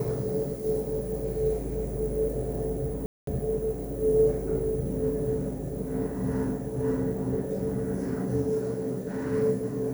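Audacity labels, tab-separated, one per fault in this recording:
3.060000	3.270000	drop-out 213 ms

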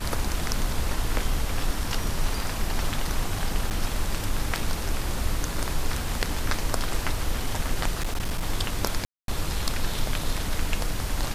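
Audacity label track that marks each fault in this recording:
3.700000	3.710000	drop-out 9 ms
7.970000	8.460000	clipping −22.5 dBFS
9.050000	9.280000	drop-out 232 ms

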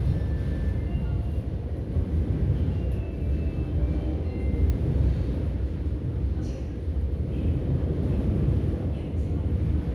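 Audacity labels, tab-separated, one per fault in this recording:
4.700000	4.700000	click −17 dBFS

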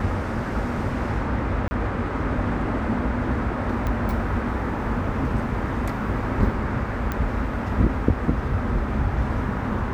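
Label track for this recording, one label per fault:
1.680000	1.710000	drop-out 30 ms
3.870000	3.870000	click −15 dBFS
7.120000	7.120000	click −13 dBFS

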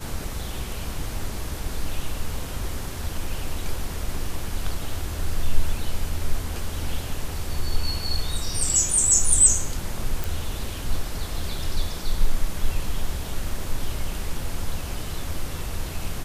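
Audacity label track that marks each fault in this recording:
10.240000	10.240000	click

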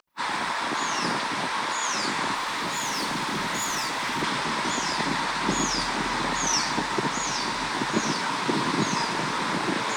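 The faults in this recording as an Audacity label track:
2.340000	4.240000	clipping −24.5 dBFS

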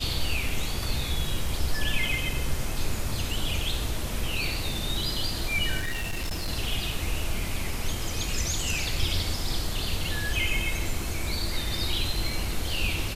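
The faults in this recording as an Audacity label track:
5.790000	6.490000	clipping −26 dBFS

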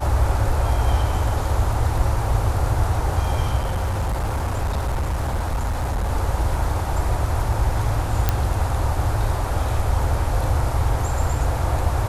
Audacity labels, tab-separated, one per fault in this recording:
3.570000	6.100000	clipping −19 dBFS
8.290000	8.290000	click −4 dBFS

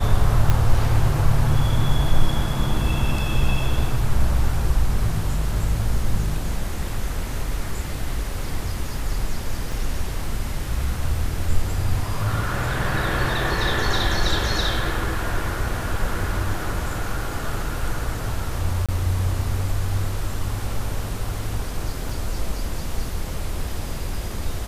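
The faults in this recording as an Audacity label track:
0.500000	0.500000	click −6 dBFS
9.720000	9.720000	drop-out 2.7 ms
18.860000	18.890000	drop-out 26 ms
22.090000	22.090000	drop-out 3.6 ms

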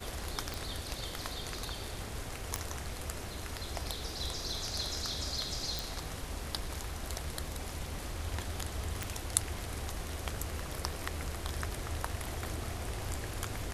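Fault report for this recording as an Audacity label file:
0.540000	0.540000	click
2.560000	2.560000	click −17 dBFS
5.790000	5.790000	click
9.030000	9.030000	click

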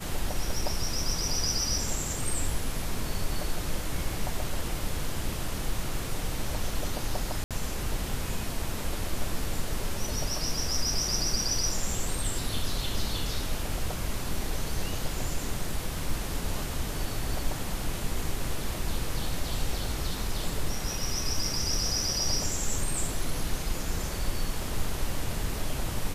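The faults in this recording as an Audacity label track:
7.440000	7.510000	drop-out 67 ms

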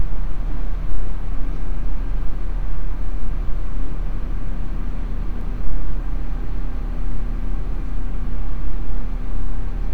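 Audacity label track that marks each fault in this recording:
5.410000	5.410000	drop-out 2.5 ms

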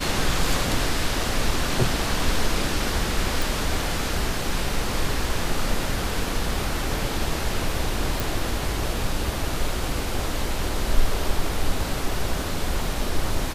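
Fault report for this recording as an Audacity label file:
3.420000	3.420000	click
8.200000	8.200000	click

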